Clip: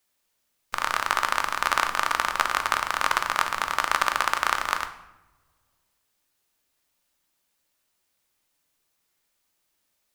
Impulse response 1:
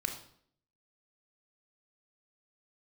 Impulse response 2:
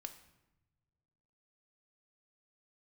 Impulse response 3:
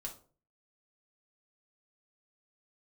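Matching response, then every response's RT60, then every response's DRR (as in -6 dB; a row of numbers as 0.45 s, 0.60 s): 2; 0.60 s, 1.1 s, 0.40 s; 3.5 dB, 6.5 dB, 0.0 dB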